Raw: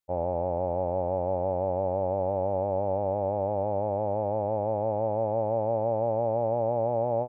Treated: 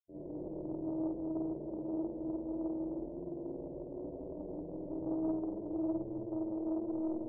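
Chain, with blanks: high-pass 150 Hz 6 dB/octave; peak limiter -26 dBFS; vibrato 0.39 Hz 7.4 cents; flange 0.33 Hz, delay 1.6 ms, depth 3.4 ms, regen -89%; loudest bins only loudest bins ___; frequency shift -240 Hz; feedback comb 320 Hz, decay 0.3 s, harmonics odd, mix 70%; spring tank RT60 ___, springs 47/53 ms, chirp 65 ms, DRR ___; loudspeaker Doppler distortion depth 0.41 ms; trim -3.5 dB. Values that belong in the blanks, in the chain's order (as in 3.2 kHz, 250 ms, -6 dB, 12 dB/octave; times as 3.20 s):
32, 1.5 s, -9 dB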